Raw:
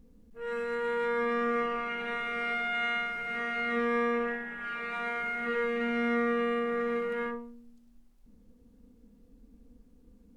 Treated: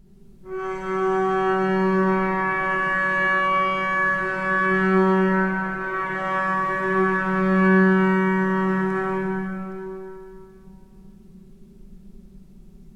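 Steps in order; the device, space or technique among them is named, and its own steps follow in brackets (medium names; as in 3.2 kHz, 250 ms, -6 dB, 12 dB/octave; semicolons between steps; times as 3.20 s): slowed and reverbed (tape speed -20%; reverberation RT60 2.7 s, pre-delay 46 ms, DRR -4 dB); trim +6 dB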